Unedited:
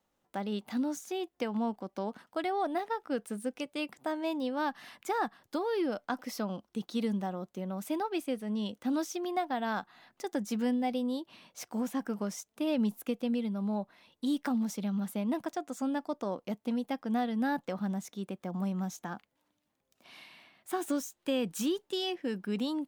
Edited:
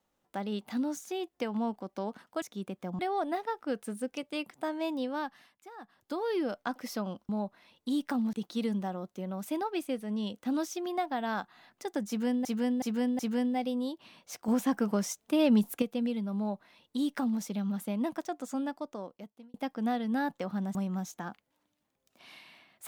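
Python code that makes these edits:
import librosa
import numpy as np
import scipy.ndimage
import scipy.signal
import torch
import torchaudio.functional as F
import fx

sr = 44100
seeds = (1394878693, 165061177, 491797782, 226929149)

y = fx.edit(x, sr, fx.fade_down_up(start_s=4.48, length_s=1.21, db=-17.5, fade_s=0.48),
    fx.repeat(start_s=10.47, length_s=0.37, count=4),
    fx.clip_gain(start_s=11.76, length_s=1.34, db=5.5),
    fx.duplicate(start_s=13.65, length_s=1.04, to_s=6.72),
    fx.fade_out_span(start_s=15.76, length_s=1.06),
    fx.move(start_s=18.03, length_s=0.57, to_s=2.42), tone=tone)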